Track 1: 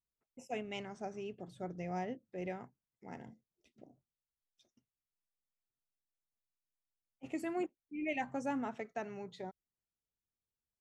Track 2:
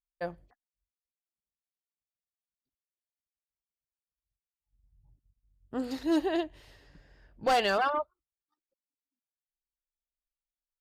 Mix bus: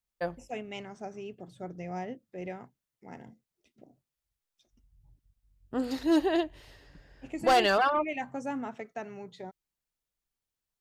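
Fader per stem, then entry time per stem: +2.0, +2.5 decibels; 0.00, 0.00 seconds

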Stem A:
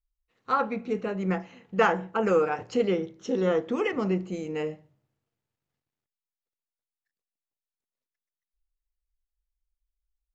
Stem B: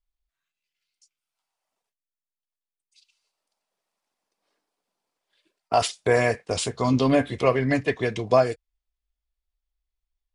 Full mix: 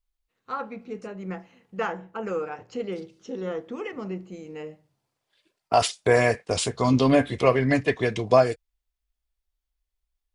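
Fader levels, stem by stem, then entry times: −6.5, +1.0 decibels; 0.00, 0.00 seconds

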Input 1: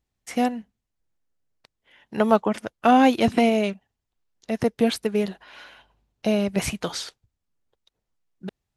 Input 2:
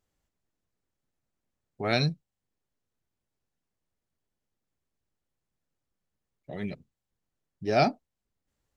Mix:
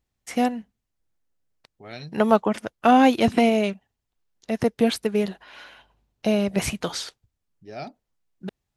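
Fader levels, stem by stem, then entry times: +0.5, −13.0 decibels; 0.00, 0.00 seconds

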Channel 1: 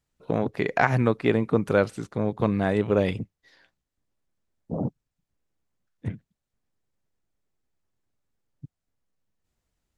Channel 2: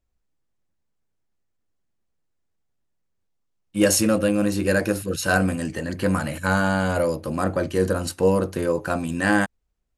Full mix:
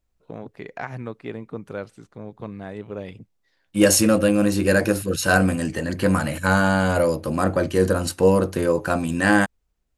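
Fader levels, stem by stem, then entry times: −11.0, +2.5 decibels; 0.00, 0.00 seconds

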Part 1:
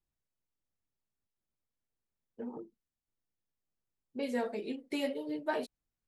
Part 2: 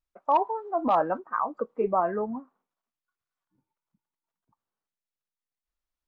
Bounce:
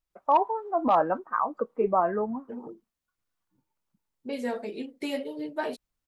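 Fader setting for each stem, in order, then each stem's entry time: +2.5, +1.0 decibels; 0.10, 0.00 seconds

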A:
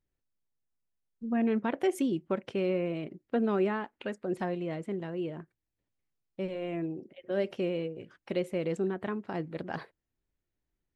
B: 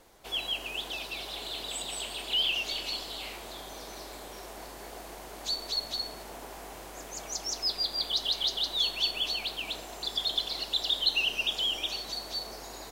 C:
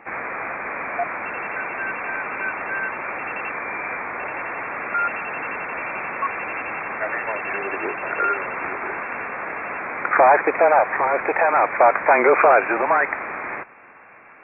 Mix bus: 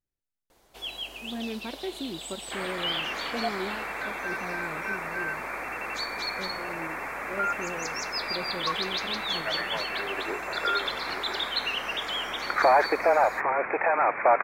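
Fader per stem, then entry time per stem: −7.0, −3.5, −6.0 decibels; 0.00, 0.50, 2.45 seconds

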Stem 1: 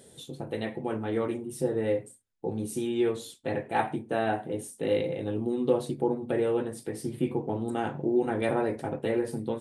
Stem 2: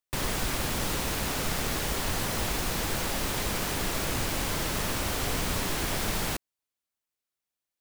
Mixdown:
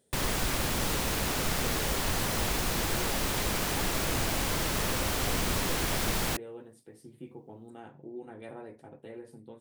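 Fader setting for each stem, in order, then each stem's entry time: −17.0, 0.0 decibels; 0.00, 0.00 seconds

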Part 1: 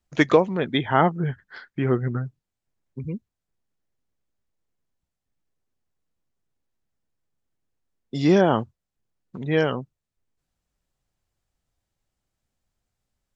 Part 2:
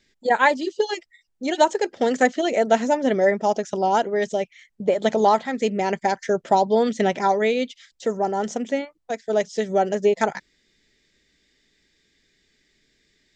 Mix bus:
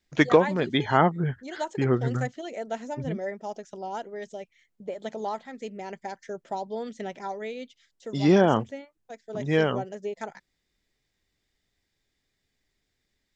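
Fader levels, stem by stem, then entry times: −1.5, −14.5 decibels; 0.00, 0.00 seconds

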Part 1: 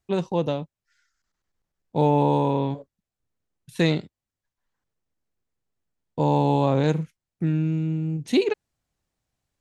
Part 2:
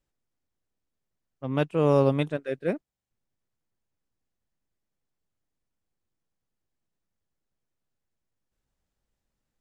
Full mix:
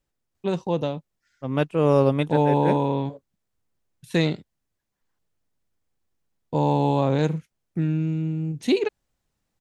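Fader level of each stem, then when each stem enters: −0.5, +2.5 decibels; 0.35, 0.00 seconds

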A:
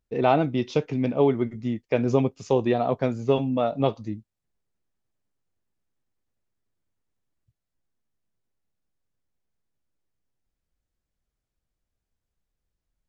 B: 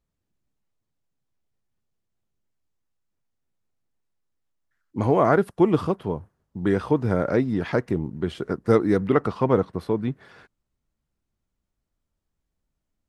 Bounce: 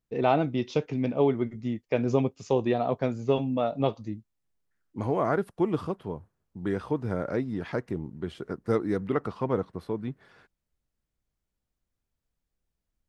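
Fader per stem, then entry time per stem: −3.0, −7.5 decibels; 0.00, 0.00 seconds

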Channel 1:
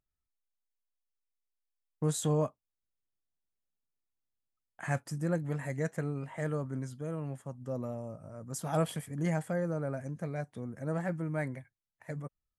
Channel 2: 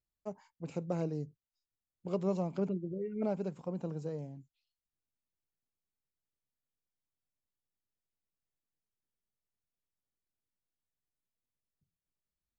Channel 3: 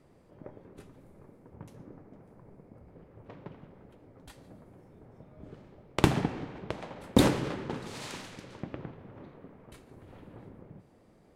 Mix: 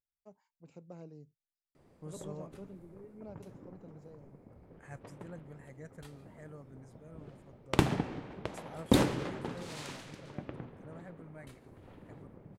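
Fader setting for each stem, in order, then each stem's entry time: −16.5, −14.5, −3.0 decibels; 0.00, 0.00, 1.75 seconds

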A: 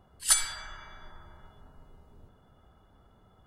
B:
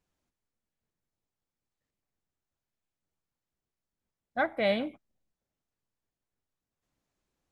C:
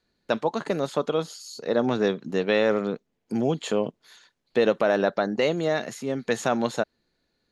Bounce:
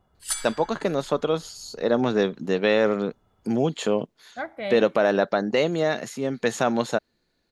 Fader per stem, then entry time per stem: −5.0, −4.0, +1.5 decibels; 0.00, 0.00, 0.15 seconds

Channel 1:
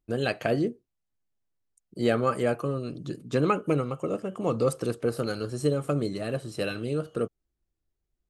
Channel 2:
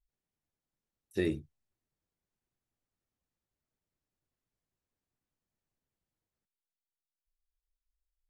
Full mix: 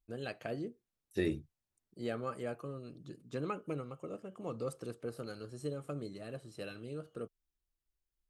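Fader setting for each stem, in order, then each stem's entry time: −14.0, −2.0 decibels; 0.00, 0.00 seconds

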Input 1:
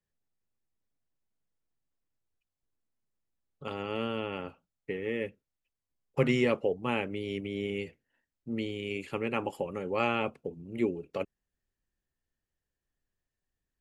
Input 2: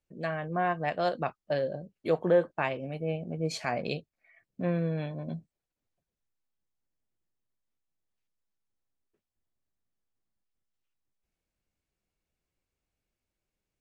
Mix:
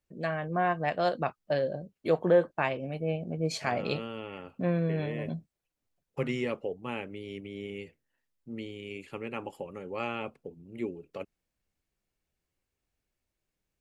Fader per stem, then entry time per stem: −5.5, +1.0 decibels; 0.00, 0.00 seconds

